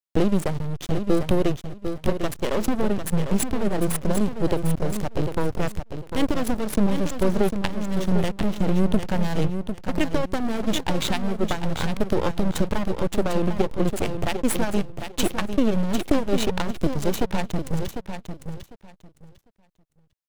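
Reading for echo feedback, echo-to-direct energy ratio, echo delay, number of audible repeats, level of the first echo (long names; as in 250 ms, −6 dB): 19%, −8.0 dB, 750 ms, 2, −8.0 dB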